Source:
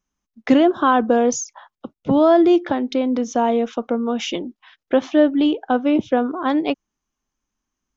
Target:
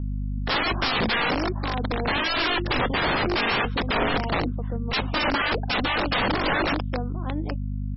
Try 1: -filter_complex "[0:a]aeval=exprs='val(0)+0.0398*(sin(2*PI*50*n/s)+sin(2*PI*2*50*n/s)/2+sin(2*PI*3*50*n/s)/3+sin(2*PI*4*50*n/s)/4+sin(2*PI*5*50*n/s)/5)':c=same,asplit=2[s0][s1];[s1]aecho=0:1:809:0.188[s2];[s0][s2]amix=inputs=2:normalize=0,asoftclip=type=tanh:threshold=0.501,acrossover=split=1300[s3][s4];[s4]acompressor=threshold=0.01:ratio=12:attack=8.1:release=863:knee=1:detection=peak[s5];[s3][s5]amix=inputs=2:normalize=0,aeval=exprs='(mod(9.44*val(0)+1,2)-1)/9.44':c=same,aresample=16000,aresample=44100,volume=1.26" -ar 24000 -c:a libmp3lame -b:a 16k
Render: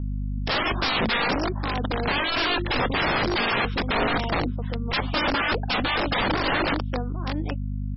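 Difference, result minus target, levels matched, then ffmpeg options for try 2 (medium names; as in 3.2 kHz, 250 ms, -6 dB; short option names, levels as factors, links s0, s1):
compression: peak gain reduction -9.5 dB
-filter_complex "[0:a]aeval=exprs='val(0)+0.0398*(sin(2*PI*50*n/s)+sin(2*PI*2*50*n/s)/2+sin(2*PI*3*50*n/s)/3+sin(2*PI*4*50*n/s)/4+sin(2*PI*5*50*n/s)/5)':c=same,asplit=2[s0][s1];[s1]aecho=0:1:809:0.188[s2];[s0][s2]amix=inputs=2:normalize=0,asoftclip=type=tanh:threshold=0.501,acrossover=split=1300[s3][s4];[s4]acompressor=threshold=0.00299:ratio=12:attack=8.1:release=863:knee=1:detection=peak[s5];[s3][s5]amix=inputs=2:normalize=0,aeval=exprs='(mod(9.44*val(0)+1,2)-1)/9.44':c=same,aresample=16000,aresample=44100,volume=1.26" -ar 24000 -c:a libmp3lame -b:a 16k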